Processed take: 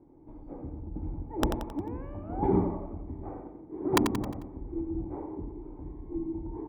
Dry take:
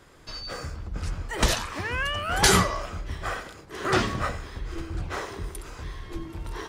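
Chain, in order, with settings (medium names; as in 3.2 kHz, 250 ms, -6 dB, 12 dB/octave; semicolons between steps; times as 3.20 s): cascade formant filter u; integer overflow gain 22.5 dB; on a send: feedback delay 89 ms, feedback 47%, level -7.5 dB; on the sum: trim +8 dB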